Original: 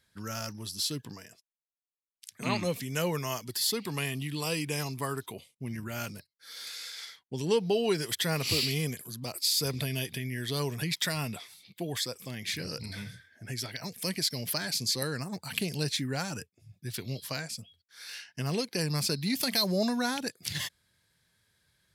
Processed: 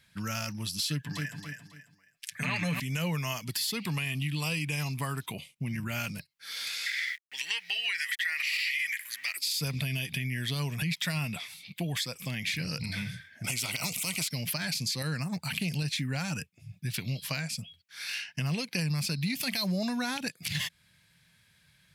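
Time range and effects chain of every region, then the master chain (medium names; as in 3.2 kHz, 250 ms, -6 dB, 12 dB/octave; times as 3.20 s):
0.88–2.80 s: peaking EQ 1.7 kHz +13.5 dB 0.4 oct + comb 6.9 ms, depth 57% + feedback delay 273 ms, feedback 29%, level -8 dB
6.86–9.37 s: small samples zeroed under -51.5 dBFS + resonant high-pass 1.9 kHz, resonance Q 10
13.44–14.28 s: Butterworth band-stop 1.7 kHz, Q 2.6 + peaking EQ 8.1 kHz +12 dB 0.7 oct + spectrum-flattening compressor 2:1
whole clip: fifteen-band graphic EQ 160 Hz +8 dB, 400 Hz -8 dB, 2.5 kHz +9 dB; peak limiter -18.5 dBFS; compression 2.5:1, threshold -36 dBFS; trim +4.5 dB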